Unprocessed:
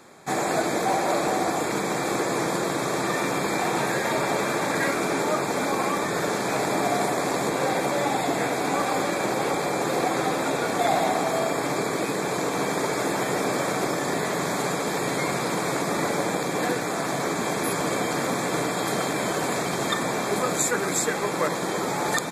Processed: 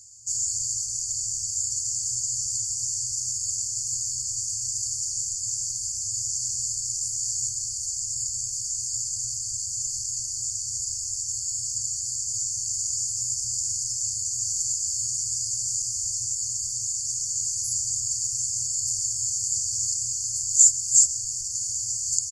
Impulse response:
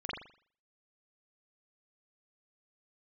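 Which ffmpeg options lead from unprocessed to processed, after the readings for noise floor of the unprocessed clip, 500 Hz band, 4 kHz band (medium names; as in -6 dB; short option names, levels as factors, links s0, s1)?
-28 dBFS, under -40 dB, -1.0 dB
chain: -filter_complex "[0:a]asoftclip=type=tanh:threshold=0.106,afftfilt=real='re*(1-between(b*sr/4096,120,4400))':imag='im*(1-between(b*sr/4096,120,4400))':win_size=4096:overlap=0.75,lowpass=f=7000:t=q:w=5.2,asplit=2[s0][s1];[s1]adelay=135,lowpass=f=4100:p=1,volume=0.211,asplit=2[s2][s3];[s3]adelay=135,lowpass=f=4100:p=1,volume=0.4,asplit=2[s4][s5];[s5]adelay=135,lowpass=f=4100:p=1,volume=0.4,asplit=2[s6][s7];[s7]adelay=135,lowpass=f=4100:p=1,volume=0.4[s8];[s2][s4][s6][s8]amix=inputs=4:normalize=0[s9];[s0][s9]amix=inputs=2:normalize=0,volume=1.19"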